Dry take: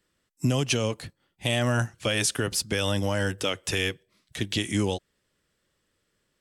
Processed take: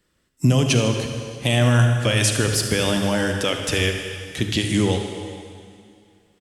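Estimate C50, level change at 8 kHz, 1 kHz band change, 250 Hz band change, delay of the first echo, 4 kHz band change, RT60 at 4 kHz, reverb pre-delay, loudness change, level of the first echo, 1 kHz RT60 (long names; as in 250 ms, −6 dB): 4.5 dB, +5.5 dB, +6.0 dB, +7.5 dB, 76 ms, +5.5 dB, 2.3 s, 37 ms, +6.5 dB, −13.0 dB, 2.4 s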